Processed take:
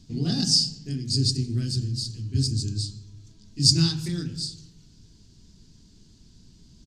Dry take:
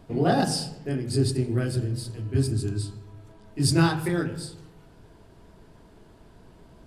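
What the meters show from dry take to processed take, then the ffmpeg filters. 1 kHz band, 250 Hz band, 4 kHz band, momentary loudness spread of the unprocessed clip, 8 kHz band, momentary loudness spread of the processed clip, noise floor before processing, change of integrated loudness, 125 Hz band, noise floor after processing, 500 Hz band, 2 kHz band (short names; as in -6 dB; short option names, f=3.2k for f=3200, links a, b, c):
under -15 dB, -2.5 dB, +10.5 dB, 14 LU, +5.5 dB, 13 LU, -53 dBFS, +1.5 dB, 0.0 dB, -55 dBFS, -13.0 dB, -12.0 dB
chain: -af "firequalizer=gain_entry='entry(230,0);entry(350,-10);entry(570,-22);entry(4500,11);entry(6500,13);entry(10000,-7)':delay=0.05:min_phase=1"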